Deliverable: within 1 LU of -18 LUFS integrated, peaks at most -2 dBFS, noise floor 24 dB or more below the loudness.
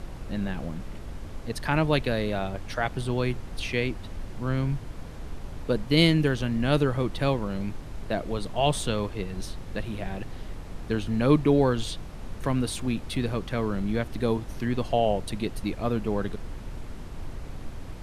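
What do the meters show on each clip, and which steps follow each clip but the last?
noise floor -40 dBFS; noise floor target -52 dBFS; loudness -27.5 LUFS; peak level -8.5 dBFS; loudness target -18.0 LUFS
-> noise print and reduce 12 dB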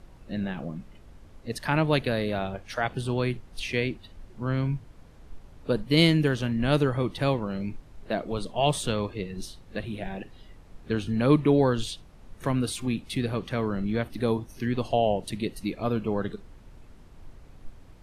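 noise floor -51 dBFS; noise floor target -52 dBFS
-> noise print and reduce 6 dB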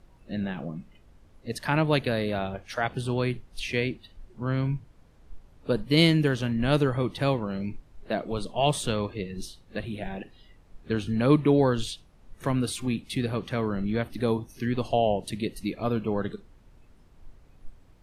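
noise floor -56 dBFS; loudness -27.5 LUFS; peak level -8.0 dBFS; loudness target -18.0 LUFS
-> trim +9.5 dB; peak limiter -2 dBFS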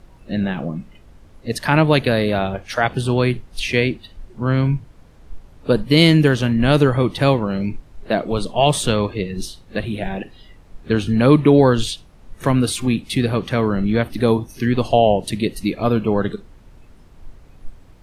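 loudness -18.5 LUFS; peak level -2.0 dBFS; noise floor -47 dBFS

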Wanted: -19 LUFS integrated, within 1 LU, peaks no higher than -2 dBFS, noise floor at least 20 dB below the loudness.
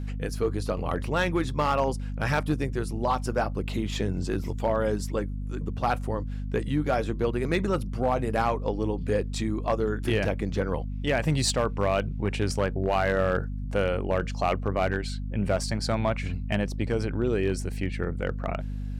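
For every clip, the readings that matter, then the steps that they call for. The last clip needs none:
clipped samples 0.5%; clipping level -16.5 dBFS; hum 50 Hz; highest harmonic 250 Hz; hum level -30 dBFS; loudness -28.0 LUFS; peak level -16.5 dBFS; loudness target -19.0 LUFS
-> clip repair -16.5 dBFS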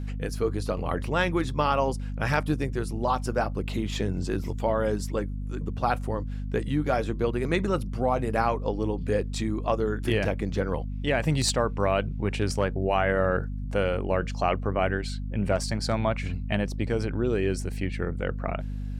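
clipped samples 0.0%; hum 50 Hz; highest harmonic 250 Hz; hum level -30 dBFS
-> de-hum 50 Hz, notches 5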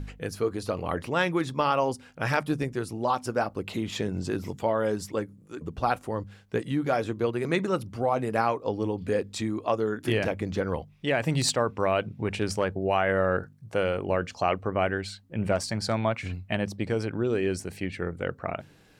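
hum not found; loudness -28.5 LUFS; peak level -10.0 dBFS; loudness target -19.0 LUFS
-> trim +9.5 dB; peak limiter -2 dBFS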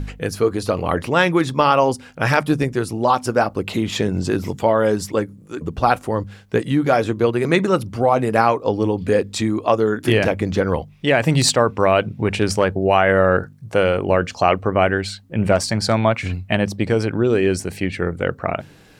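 loudness -19.0 LUFS; peak level -2.0 dBFS; noise floor -45 dBFS

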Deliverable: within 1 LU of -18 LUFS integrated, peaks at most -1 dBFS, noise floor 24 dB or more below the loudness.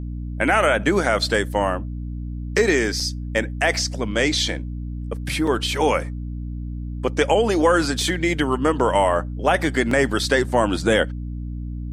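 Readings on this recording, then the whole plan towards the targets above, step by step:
dropouts 3; longest dropout 3.5 ms; hum 60 Hz; highest harmonic 300 Hz; hum level -27 dBFS; loudness -20.5 LUFS; peak level -4.5 dBFS; loudness target -18.0 LUFS
-> interpolate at 3.00/5.47/9.91 s, 3.5 ms; de-hum 60 Hz, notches 5; trim +2.5 dB

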